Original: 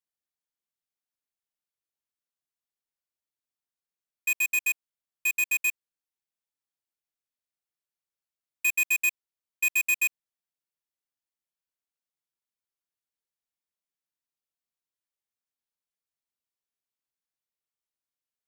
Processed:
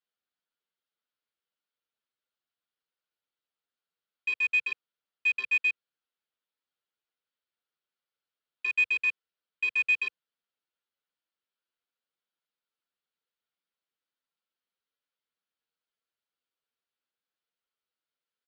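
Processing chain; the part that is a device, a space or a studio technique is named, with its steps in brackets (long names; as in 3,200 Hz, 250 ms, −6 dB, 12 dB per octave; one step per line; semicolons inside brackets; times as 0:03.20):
parametric band 4,600 Hz +6 dB 0.68 octaves
barber-pole flanger into a guitar amplifier (barber-pole flanger 8.3 ms +2.8 Hz; soft clipping −23.5 dBFS, distortion −15 dB; loudspeaker in its box 100–4,000 Hz, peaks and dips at 120 Hz −7 dB, 480 Hz +6 dB, 1,400 Hz +8 dB, 3,100 Hz +4 dB)
level +3.5 dB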